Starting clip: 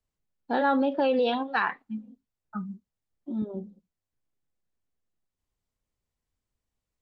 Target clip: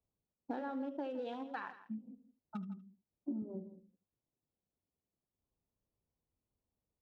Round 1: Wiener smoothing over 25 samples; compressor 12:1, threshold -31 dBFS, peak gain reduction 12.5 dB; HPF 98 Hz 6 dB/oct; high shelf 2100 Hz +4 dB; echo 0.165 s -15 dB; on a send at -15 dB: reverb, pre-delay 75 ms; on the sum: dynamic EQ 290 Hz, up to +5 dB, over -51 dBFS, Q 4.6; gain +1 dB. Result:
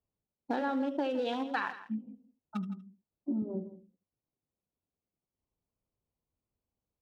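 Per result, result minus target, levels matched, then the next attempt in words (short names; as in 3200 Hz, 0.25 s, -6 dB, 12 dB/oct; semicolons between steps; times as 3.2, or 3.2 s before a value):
compressor: peak gain reduction -8 dB; 4000 Hz band +6.0 dB
Wiener smoothing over 25 samples; compressor 12:1, threshold -39.5 dBFS, peak gain reduction 20.5 dB; HPF 98 Hz 6 dB/oct; high shelf 2100 Hz +4 dB; echo 0.165 s -15 dB; on a send at -15 dB: reverb, pre-delay 75 ms; on the sum: dynamic EQ 290 Hz, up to +5 dB, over -51 dBFS, Q 4.6; gain +1 dB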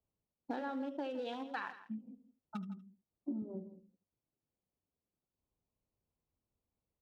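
4000 Hz band +6.0 dB
Wiener smoothing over 25 samples; compressor 12:1, threshold -39.5 dBFS, peak gain reduction 20.5 dB; HPF 98 Hz 6 dB/oct; high shelf 2100 Hz -5 dB; echo 0.165 s -15 dB; on a send at -15 dB: reverb, pre-delay 75 ms; on the sum: dynamic EQ 290 Hz, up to +5 dB, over -51 dBFS, Q 4.6; gain +1 dB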